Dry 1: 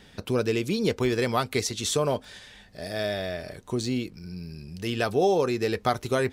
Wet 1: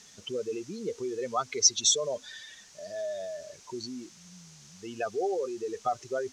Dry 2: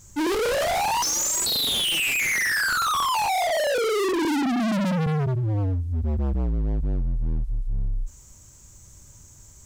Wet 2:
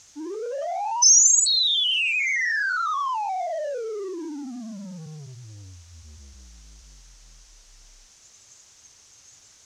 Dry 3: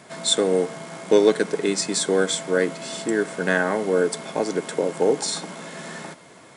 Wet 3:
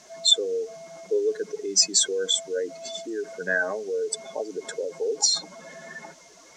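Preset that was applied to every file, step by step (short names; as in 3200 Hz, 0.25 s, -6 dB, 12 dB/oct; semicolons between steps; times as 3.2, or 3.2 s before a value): spectral contrast raised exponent 2.4; HPF 950 Hz 6 dB/oct; added noise white -57 dBFS; synth low-pass 6200 Hz, resonance Q 4.2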